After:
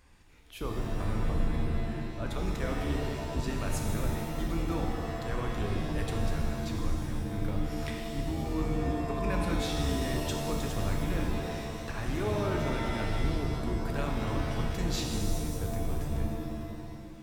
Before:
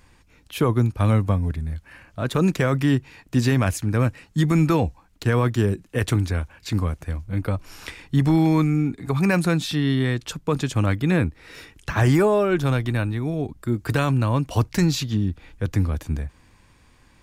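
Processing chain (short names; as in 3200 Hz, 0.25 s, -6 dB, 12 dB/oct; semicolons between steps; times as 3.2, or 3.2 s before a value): octaver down 2 oct, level +2 dB; bell 140 Hz -6 dB 0.87 oct; reverse; compressor, threshold -23 dBFS, peak gain reduction 11 dB; reverse; shimmer reverb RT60 2 s, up +7 st, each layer -2 dB, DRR 1.5 dB; gain -7.5 dB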